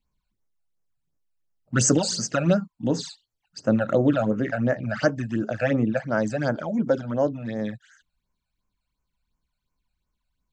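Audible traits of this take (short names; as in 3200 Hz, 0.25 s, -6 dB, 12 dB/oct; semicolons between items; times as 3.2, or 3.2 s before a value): phasing stages 12, 2.8 Hz, lowest notch 320–3800 Hz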